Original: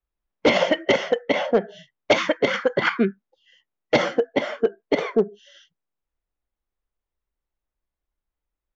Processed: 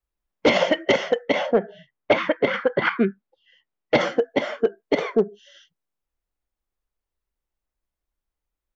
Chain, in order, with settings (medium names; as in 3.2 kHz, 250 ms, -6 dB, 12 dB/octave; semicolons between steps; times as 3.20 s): 1.52–3.99 s: low-pass 2.2 kHz -> 4.2 kHz 12 dB/octave